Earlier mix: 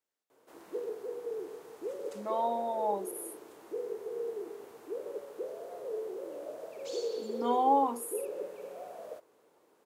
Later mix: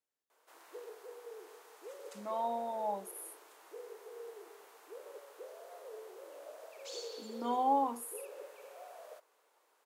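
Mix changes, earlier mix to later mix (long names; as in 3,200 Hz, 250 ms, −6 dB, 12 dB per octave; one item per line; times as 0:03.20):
speech −4.0 dB
background: add high-pass filter 860 Hz 12 dB per octave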